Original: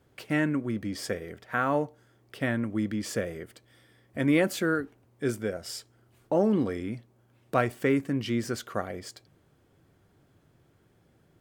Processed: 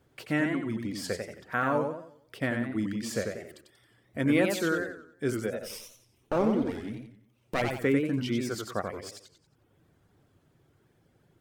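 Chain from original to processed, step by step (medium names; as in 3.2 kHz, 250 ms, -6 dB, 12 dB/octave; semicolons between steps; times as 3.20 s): 5.62–7.62 s: comb filter that takes the minimum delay 0.34 ms; reverb removal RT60 0.86 s; modulated delay 90 ms, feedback 39%, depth 169 cents, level -5 dB; trim -1 dB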